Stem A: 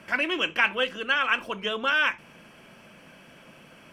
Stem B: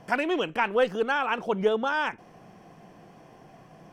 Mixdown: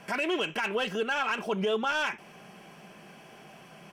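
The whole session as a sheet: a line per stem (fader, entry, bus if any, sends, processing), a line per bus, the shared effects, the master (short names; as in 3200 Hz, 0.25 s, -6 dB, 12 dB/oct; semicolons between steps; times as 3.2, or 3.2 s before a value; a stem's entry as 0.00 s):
-12.0 dB, 0.00 s, no send, overdrive pedal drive 14 dB, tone 8000 Hz, clips at -7 dBFS
-1.5 dB, 0.4 ms, polarity flipped, no send, low shelf 62 Hz -12 dB; comb 5 ms, depth 44%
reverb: off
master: high shelf 5100 Hz +6 dB; limiter -20 dBFS, peak gain reduction 9.5 dB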